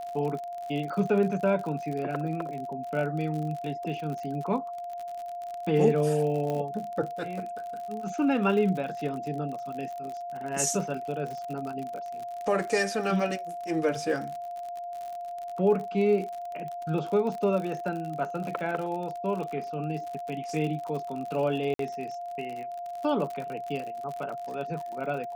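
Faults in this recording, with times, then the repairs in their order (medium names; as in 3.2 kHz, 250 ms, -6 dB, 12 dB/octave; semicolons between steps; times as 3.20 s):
crackle 53 per s -34 dBFS
whine 700 Hz -34 dBFS
6.50 s: pop -20 dBFS
21.74–21.79 s: dropout 53 ms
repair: de-click; band-stop 700 Hz, Q 30; interpolate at 21.74 s, 53 ms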